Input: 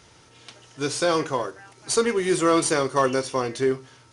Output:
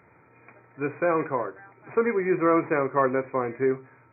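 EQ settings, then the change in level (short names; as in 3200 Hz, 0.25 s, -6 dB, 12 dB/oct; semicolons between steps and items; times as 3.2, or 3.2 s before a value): HPF 110 Hz; brick-wall FIR low-pass 2500 Hz; -1.5 dB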